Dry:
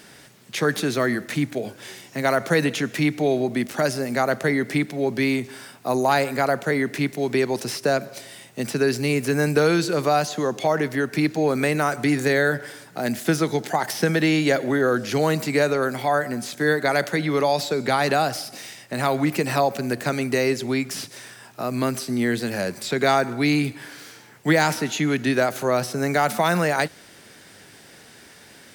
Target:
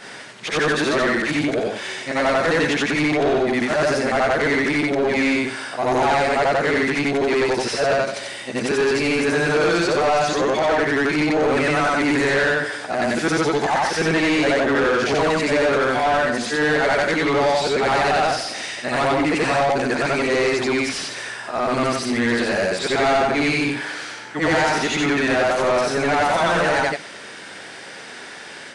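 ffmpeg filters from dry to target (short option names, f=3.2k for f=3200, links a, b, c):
-filter_complex "[0:a]afftfilt=real='re':imag='-im':win_size=8192:overlap=0.75,asplit=2[a][b];[b]highpass=f=720:p=1,volume=26dB,asoftclip=type=tanh:threshold=-10.5dB[c];[a][c]amix=inputs=2:normalize=0,lowpass=f=2.4k:p=1,volume=-6dB,aresample=22050,aresample=44100"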